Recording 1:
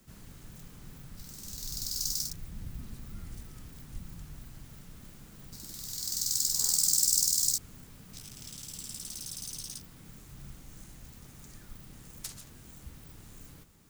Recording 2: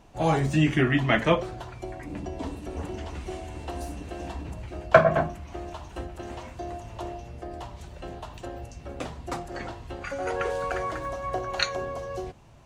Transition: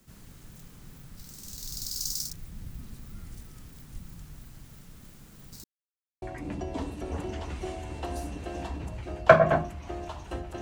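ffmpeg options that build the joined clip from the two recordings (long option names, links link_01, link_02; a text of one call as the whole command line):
ffmpeg -i cue0.wav -i cue1.wav -filter_complex "[0:a]apad=whole_dur=10.61,atrim=end=10.61,asplit=2[link_01][link_02];[link_01]atrim=end=5.64,asetpts=PTS-STARTPTS,afade=type=out:start_time=5.636:duration=0.004:curve=hsin[link_03];[link_02]atrim=start=5.64:end=6.22,asetpts=PTS-STARTPTS,volume=0[link_04];[1:a]atrim=start=1.87:end=6.26,asetpts=PTS-STARTPTS,afade=type=in:duration=0.004:curve=hsin[link_05];[link_03][link_04][link_05]concat=n=3:v=0:a=1" out.wav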